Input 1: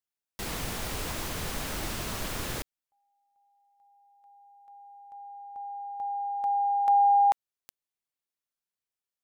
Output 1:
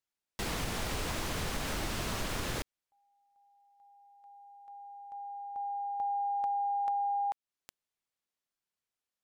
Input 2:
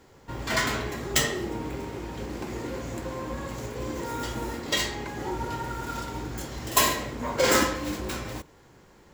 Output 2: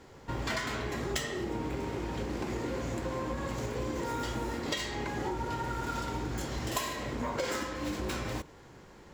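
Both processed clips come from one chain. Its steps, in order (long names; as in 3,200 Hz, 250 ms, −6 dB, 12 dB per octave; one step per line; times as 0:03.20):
high-shelf EQ 11,000 Hz −10 dB
downward compressor 16 to 1, threshold −32 dBFS
level +2 dB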